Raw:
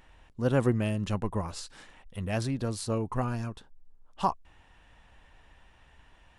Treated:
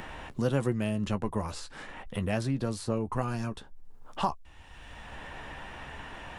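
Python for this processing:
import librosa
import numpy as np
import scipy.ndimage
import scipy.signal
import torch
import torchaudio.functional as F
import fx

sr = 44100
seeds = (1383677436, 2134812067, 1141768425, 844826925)

y = fx.doubler(x, sr, ms=14.0, db=-11)
y = fx.band_squash(y, sr, depth_pct=70)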